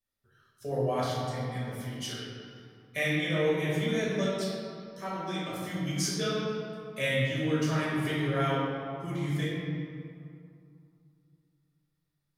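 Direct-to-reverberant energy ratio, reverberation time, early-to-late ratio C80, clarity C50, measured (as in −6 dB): −8.0 dB, 2.4 s, 0.0 dB, −2.0 dB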